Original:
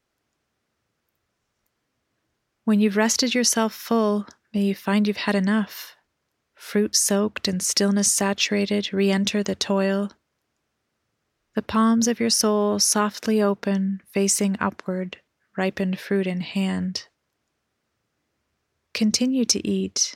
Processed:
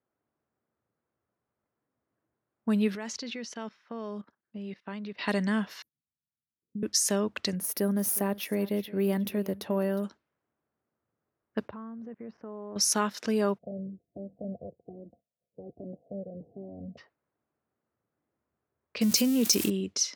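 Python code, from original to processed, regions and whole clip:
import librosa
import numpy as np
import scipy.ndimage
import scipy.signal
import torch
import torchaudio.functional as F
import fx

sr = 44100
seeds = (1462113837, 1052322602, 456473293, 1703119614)

y = fx.chain(x, sr, fx.lowpass(hz=11000.0, slope=12),
    fx.level_steps(step_db=15),
    fx.upward_expand(threshold_db=-44.0, expansion=1.5), at=(2.95, 5.21))
y = fx.chain(y, sr, fx.level_steps(step_db=22),
    fx.cheby2_bandstop(low_hz=690.0, high_hz=5300.0, order=4, stop_db=60), at=(5.82, 6.83))
y = fx.chain(y, sr, fx.median_filter(points=3),
    fx.curve_eq(hz=(580.0, 7700.0, 11000.0), db=(0, -16, 14)),
    fx.echo_single(ms=361, db=-18.5), at=(7.55, 10.04))
y = fx.chain(y, sr, fx.law_mismatch(coded='A'),
    fx.lowpass(hz=1200.0, slope=12),
    fx.level_steps(step_db=17), at=(11.68, 12.76))
y = fx.spec_clip(y, sr, under_db=20, at=(13.57, 16.97), fade=0.02)
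y = fx.cheby_ripple(y, sr, hz=720.0, ripple_db=6, at=(13.57, 16.97), fade=0.02)
y = fx.comb_cascade(y, sr, direction='falling', hz=1.2, at=(13.57, 16.97), fade=0.02)
y = fx.chain(y, sr, fx.crossing_spikes(level_db=-23.0),
    fx.high_shelf(hz=12000.0, db=9.0),
    fx.env_flatten(amount_pct=50), at=(19.01, 19.7))
y = scipy.signal.sosfilt(scipy.signal.butter(2, 71.0, 'highpass', fs=sr, output='sos'), y)
y = fx.env_lowpass(y, sr, base_hz=1200.0, full_db=-21.0)
y = fx.low_shelf(y, sr, hz=90.0, db=-6.0)
y = F.gain(torch.from_numpy(y), -6.0).numpy()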